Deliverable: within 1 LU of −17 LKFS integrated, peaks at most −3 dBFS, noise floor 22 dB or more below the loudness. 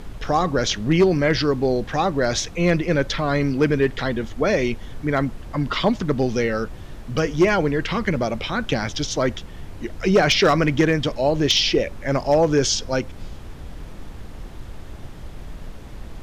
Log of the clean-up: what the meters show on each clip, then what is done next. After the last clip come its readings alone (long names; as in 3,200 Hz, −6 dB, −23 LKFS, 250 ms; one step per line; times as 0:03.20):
share of clipped samples 0.5%; peaks flattened at −9.5 dBFS; background noise floor −37 dBFS; target noise floor −43 dBFS; integrated loudness −21.0 LKFS; sample peak −9.5 dBFS; target loudness −17.0 LKFS
→ clipped peaks rebuilt −9.5 dBFS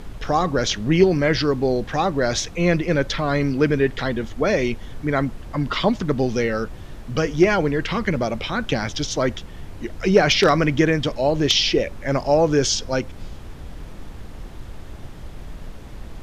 share of clipped samples 0.0%; background noise floor −37 dBFS; target noise floor −43 dBFS
→ noise reduction from a noise print 6 dB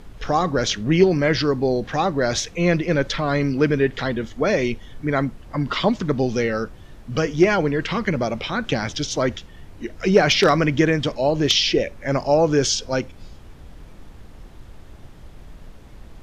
background noise floor −43 dBFS; integrated loudness −20.5 LKFS; sample peak −1.5 dBFS; target loudness −17.0 LKFS
→ level +3.5 dB
brickwall limiter −3 dBFS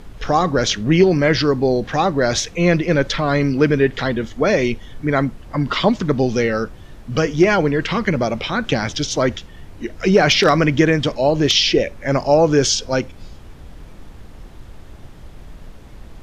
integrated loudness −17.5 LKFS; sample peak −3.0 dBFS; background noise floor −40 dBFS